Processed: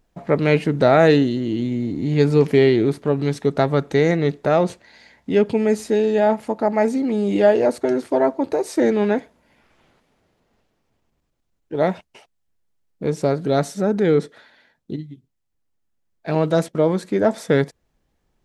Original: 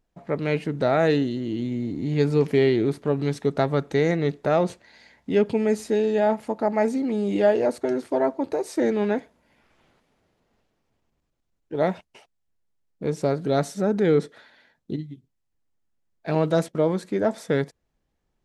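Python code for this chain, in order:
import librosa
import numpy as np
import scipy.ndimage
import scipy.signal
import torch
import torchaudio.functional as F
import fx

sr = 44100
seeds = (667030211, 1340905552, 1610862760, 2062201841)

y = fx.rider(x, sr, range_db=10, speed_s=2.0)
y = F.gain(torch.from_numpy(y), 4.5).numpy()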